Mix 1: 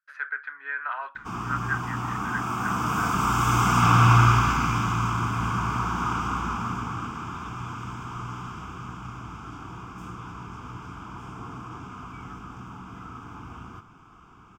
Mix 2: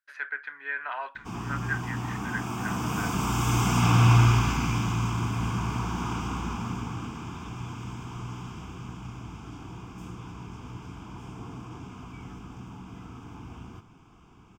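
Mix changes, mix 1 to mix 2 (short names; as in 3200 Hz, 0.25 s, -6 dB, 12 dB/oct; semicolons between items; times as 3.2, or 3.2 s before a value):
speech +5.0 dB; master: add bell 1300 Hz -12 dB 0.68 oct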